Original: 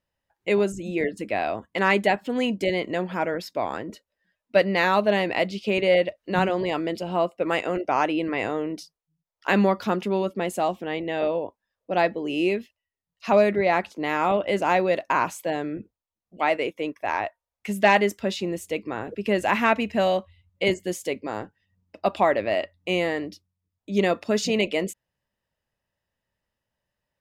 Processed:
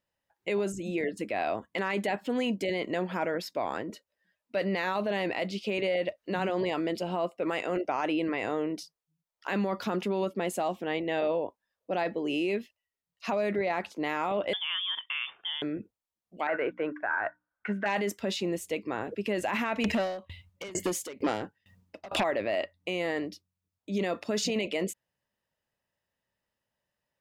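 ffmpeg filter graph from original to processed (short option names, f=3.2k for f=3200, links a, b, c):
-filter_complex "[0:a]asettb=1/sr,asplit=3[a][b][c];[a]atrim=end=14.534[d];[b]atrim=start=14.53:end=15.62,asetpts=PTS-STARTPTS,afade=t=in:d=0.004:c=qsin,afade=t=out:st=1.086:d=0.004:c=qsin,acompressor=threshold=-32dB:ratio=2.5:attack=3.2:release=140:knee=1:detection=peak,lowpass=f=3.1k:t=q:w=0.5098,lowpass=f=3.1k:t=q:w=0.6013,lowpass=f=3.1k:t=q:w=0.9,lowpass=f=3.1k:t=q:w=2.563,afreqshift=-3700[e];[c]atrim=start=15.616[f];[d][e]acrossfade=d=0.004:c1=hsin:c2=qsin[g];[g][f]acrossfade=d=0.004:c1=qsin:c2=hsin,asettb=1/sr,asplit=3[h][i][j];[h]atrim=end=16.474[k];[i]atrim=start=16.47:end=17.86,asetpts=PTS-STARTPTS,afade=t=in:d=0.004:c=qsin,afade=t=out:st=1.386:d=0.004:c=qsin,lowpass=f=1.5k:t=q:w=15,bandreject=f=60:t=h:w=6,bandreject=f=120:t=h:w=6,bandreject=f=180:t=h:w=6,bandreject=f=240:t=h:w=6,bandreject=f=300:t=h:w=6[l];[j]atrim=start=17.856[m];[k][l]acrossfade=d=0.004:c1=hsin:c2=qsin[n];[n][m]acrossfade=d=0.004:c1=qsin:c2=hsin,asettb=1/sr,asplit=3[o][p][q];[o]atrim=end=19.844[r];[p]atrim=start=19.84:end=22.24,asetpts=PTS-STARTPTS,afade=t=in:d=0.004:c=qsin,afade=t=out:st=2.396:d=0.004:c=qsin,acompressor=threshold=-29dB:ratio=10:attack=3.2:release=140:knee=1:detection=peak,aeval=exprs='0.211*sin(PI/2*5.62*val(0)/0.211)':c=same,aeval=exprs='val(0)*pow(10,-26*if(lt(mod(2.2*n/s,1),2*abs(2.2)/1000),1-mod(2.2*n/s,1)/(2*abs(2.2)/1000),(mod(2.2*n/s,1)-2*abs(2.2)/1000)/(1-2*abs(2.2)/1000))/20)':c=same[s];[q]atrim=start=22.236[t];[r][s]acrossfade=d=0.004:c1=hsin:c2=qsin[u];[u][t]acrossfade=d=0.004:c1=qsin:c2=hsin,alimiter=limit=-19dB:level=0:latency=1:release=15,lowshelf=f=84:g=-10.5,volume=-1.5dB"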